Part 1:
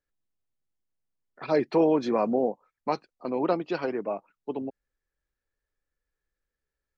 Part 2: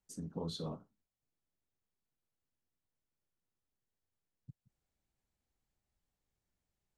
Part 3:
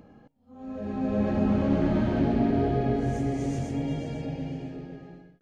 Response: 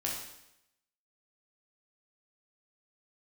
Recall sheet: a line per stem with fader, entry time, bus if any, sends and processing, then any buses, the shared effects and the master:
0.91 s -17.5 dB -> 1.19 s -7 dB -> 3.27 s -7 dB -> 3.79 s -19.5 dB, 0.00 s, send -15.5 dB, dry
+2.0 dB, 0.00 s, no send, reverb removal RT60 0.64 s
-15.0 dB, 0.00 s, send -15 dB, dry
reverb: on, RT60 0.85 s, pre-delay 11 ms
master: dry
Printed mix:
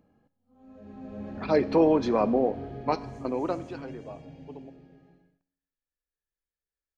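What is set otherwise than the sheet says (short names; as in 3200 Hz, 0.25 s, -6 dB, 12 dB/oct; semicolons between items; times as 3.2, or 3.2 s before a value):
stem 1 -17.5 dB -> -11.0 dB; stem 2: muted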